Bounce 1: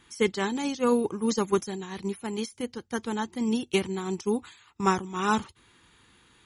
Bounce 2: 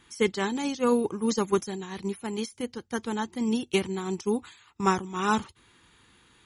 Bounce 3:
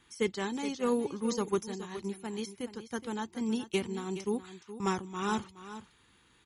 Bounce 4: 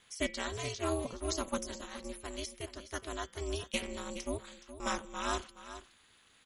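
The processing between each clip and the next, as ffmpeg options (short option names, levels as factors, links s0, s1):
-af anull
-filter_complex "[0:a]acrossover=split=600|3600[s0][s1][s2];[s1]asoftclip=type=tanh:threshold=0.075[s3];[s0][s3][s2]amix=inputs=3:normalize=0,aecho=1:1:420:0.224,volume=0.531"
-af "tiltshelf=f=1100:g=-4.5,bandreject=f=192.9:t=h:w=4,bandreject=f=385.8:t=h:w=4,bandreject=f=578.7:t=h:w=4,bandreject=f=771.6:t=h:w=4,bandreject=f=964.5:t=h:w=4,bandreject=f=1157.4:t=h:w=4,bandreject=f=1350.3:t=h:w=4,bandreject=f=1543.2:t=h:w=4,bandreject=f=1736.1:t=h:w=4,bandreject=f=1929:t=h:w=4,bandreject=f=2121.9:t=h:w=4,bandreject=f=2314.8:t=h:w=4,bandreject=f=2507.7:t=h:w=4,bandreject=f=2700.6:t=h:w=4,bandreject=f=2893.5:t=h:w=4,bandreject=f=3086.4:t=h:w=4,bandreject=f=3279.3:t=h:w=4,bandreject=f=3472.2:t=h:w=4,aeval=exprs='val(0)*sin(2*PI*160*n/s)':c=same,volume=1.19"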